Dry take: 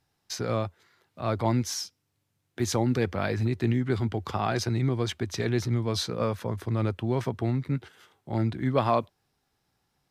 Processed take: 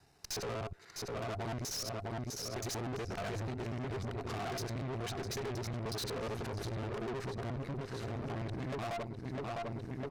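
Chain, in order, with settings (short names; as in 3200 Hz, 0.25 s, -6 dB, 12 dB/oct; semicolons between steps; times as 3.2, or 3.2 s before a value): local time reversal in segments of 61 ms; on a send: feedback echo 0.654 s, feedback 55%, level -15 dB; on the sum: spectral gain 6.91–7.14, 200–1900 Hz +7 dB; LPF 11000 Hz; notch 3300 Hz, Q 7.2; small resonant body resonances 410/690 Hz, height 9 dB, ringing for 85 ms; compressor 3:1, threshold -40 dBFS, peak gain reduction 18 dB; tube stage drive 49 dB, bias 0.75; gain +12.5 dB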